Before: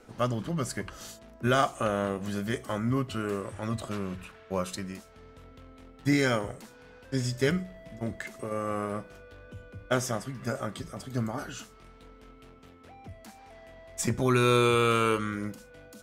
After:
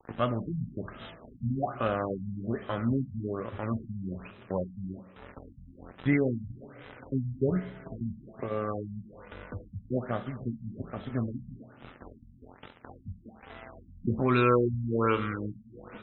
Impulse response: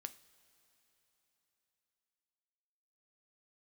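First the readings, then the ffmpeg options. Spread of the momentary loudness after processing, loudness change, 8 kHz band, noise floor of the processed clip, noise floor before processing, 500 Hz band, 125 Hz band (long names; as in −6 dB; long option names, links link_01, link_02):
21 LU, −2.0 dB, below −40 dB, −56 dBFS, −53 dBFS, −2.0 dB, −0.5 dB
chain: -filter_complex "[0:a]aeval=exprs='sgn(val(0))*max(abs(val(0))-0.00398,0)':channel_layout=same,acompressor=mode=upward:threshold=-29dB:ratio=2.5[link_01];[1:a]atrim=start_sample=2205,asetrate=33957,aresample=44100[link_02];[link_01][link_02]afir=irnorm=-1:irlink=0,afftfilt=real='re*lt(b*sr/1024,230*pow(4100/230,0.5+0.5*sin(2*PI*1.2*pts/sr)))':imag='im*lt(b*sr/1024,230*pow(4100/230,0.5+0.5*sin(2*PI*1.2*pts/sr)))':win_size=1024:overlap=0.75,volume=3.5dB"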